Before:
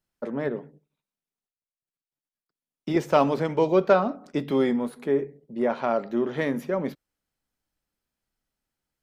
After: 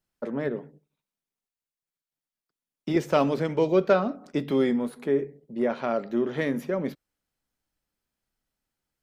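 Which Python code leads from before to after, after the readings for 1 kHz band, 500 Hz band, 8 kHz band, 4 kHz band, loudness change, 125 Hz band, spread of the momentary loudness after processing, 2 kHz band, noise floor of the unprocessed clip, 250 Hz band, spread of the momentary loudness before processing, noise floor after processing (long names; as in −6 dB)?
−4.0 dB, −1.5 dB, can't be measured, 0.0 dB, −1.5 dB, 0.0 dB, 9 LU, −1.0 dB, below −85 dBFS, 0.0 dB, 10 LU, below −85 dBFS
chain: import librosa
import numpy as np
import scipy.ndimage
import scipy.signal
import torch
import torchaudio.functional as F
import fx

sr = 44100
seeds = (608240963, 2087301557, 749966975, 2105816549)

y = fx.dynamic_eq(x, sr, hz=900.0, q=1.6, threshold_db=-37.0, ratio=4.0, max_db=-6)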